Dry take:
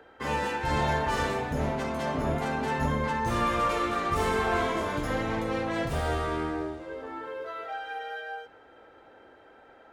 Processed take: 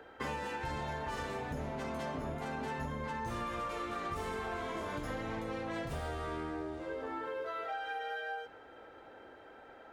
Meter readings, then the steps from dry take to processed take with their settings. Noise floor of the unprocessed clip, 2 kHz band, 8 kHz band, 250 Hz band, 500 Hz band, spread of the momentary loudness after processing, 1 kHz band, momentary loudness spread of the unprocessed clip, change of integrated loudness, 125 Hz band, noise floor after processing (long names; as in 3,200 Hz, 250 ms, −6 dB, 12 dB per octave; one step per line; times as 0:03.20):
−55 dBFS, −9.0 dB, −10.5 dB, −9.5 dB, −9.0 dB, 16 LU, −9.5 dB, 11 LU, −9.5 dB, −10.5 dB, −55 dBFS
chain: downward compressor 12 to 1, threshold −35 dBFS, peak gain reduction 13.5 dB